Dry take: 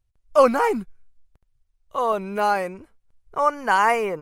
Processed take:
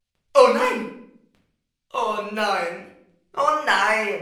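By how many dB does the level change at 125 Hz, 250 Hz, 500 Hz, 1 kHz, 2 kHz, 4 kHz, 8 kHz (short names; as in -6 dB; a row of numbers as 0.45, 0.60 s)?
n/a, -2.0 dB, +1.0 dB, -1.0 dB, +3.5 dB, +8.5 dB, +3.5 dB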